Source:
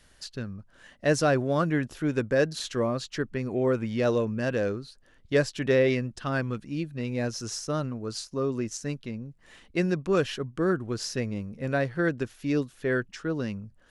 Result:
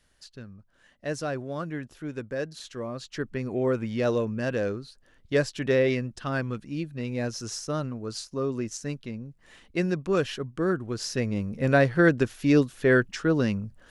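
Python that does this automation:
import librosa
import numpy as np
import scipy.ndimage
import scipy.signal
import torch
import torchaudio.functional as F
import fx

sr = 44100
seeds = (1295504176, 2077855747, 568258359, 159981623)

y = fx.gain(x, sr, db=fx.line((2.83, -8.0), (3.29, -0.5), (10.96, -0.5), (11.56, 6.5)))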